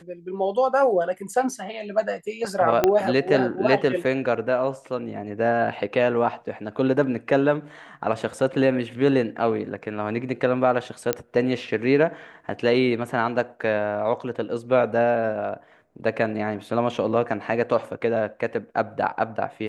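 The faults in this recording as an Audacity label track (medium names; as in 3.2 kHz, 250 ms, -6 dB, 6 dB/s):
2.840000	2.840000	pop -5 dBFS
11.130000	11.130000	pop -6 dBFS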